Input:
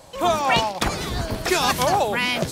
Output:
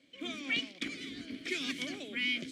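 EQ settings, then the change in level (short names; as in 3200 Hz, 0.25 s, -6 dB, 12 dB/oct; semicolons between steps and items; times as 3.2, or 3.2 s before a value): dynamic EQ 8100 Hz, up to +8 dB, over -43 dBFS, Q 0.84; vowel filter i; low shelf 250 Hz -8 dB; 0.0 dB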